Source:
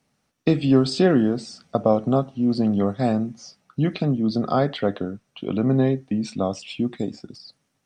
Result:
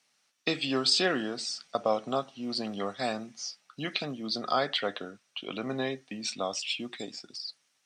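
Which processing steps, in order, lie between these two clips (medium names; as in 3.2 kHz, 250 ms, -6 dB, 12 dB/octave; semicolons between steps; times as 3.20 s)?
band-pass filter 4.7 kHz, Q 0.56; trim +5.5 dB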